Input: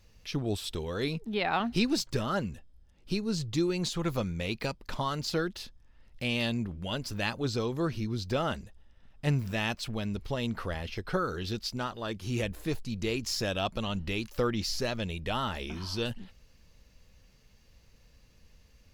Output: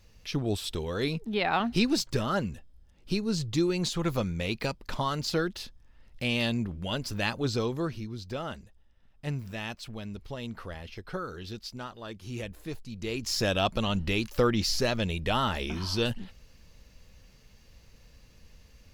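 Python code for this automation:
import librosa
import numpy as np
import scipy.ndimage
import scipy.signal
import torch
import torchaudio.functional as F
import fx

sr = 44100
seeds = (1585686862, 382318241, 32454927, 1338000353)

y = fx.gain(x, sr, db=fx.line((7.66, 2.0), (8.1, -5.5), (12.93, -5.5), (13.45, 4.5)))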